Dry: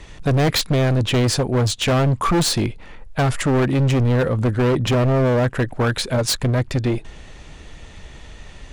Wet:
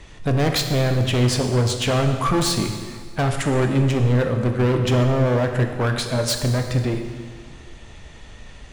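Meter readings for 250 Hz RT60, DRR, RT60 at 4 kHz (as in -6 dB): 1.7 s, 4.5 dB, 1.6 s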